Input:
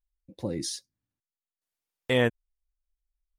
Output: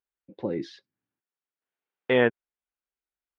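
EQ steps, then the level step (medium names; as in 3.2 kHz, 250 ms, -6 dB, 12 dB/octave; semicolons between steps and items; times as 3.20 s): cabinet simulation 170–3100 Hz, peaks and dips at 400 Hz +6 dB, 830 Hz +3 dB, 1.5 kHz +5 dB; +1.5 dB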